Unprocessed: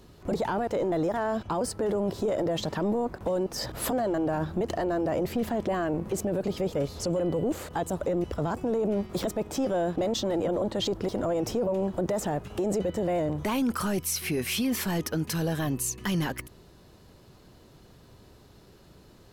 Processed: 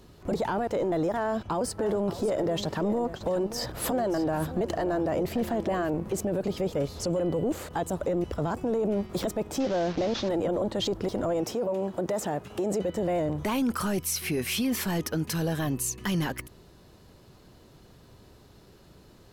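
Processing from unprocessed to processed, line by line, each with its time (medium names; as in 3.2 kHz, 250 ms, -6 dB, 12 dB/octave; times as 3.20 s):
1.20–5.90 s: delay 581 ms -13 dB
9.60–10.29 s: one-bit delta coder 32 kbps, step -33.5 dBFS
11.43–12.96 s: high-pass 310 Hz -> 110 Hz 6 dB/octave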